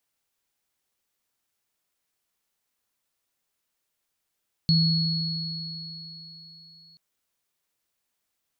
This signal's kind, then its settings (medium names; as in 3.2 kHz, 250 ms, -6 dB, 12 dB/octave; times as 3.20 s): sine partials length 2.28 s, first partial 163 Hz, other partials 4.35 kHz, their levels -3.5 dB, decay 3.06 s, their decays 4.43 s, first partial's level -17.5 dB